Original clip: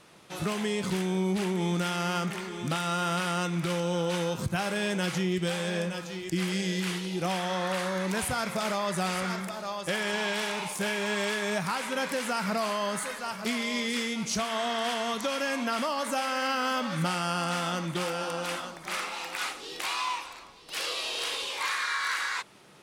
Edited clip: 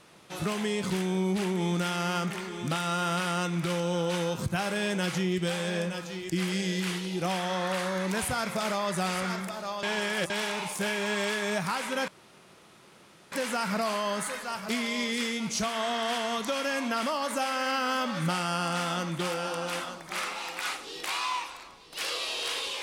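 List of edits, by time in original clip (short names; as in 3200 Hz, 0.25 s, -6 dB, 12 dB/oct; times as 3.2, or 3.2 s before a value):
9.83–10.3 reverse
12.08 insert room tone 1.24 s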